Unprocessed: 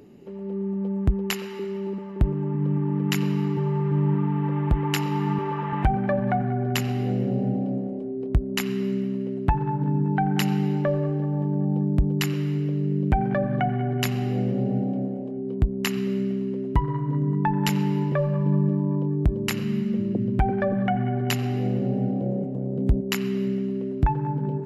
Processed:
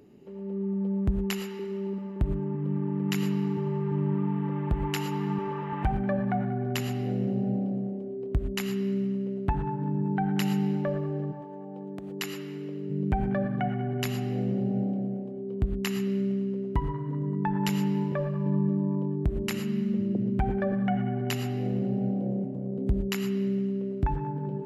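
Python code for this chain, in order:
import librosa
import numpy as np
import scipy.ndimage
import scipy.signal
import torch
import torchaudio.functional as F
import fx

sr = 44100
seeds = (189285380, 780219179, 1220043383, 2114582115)

y = fx.highpass(x, sr, hz=fx.line((11.31, 580.0), (12.89, 230.0)), slope=12, at=(11.31, 12.89), fade=0.02)
y = fx.rev_gated(y, sr, seeds[0], gate_ms=140, shape='rising', drr_db=8.5)
y = y * librosa.db_to_amplitude(-6.0)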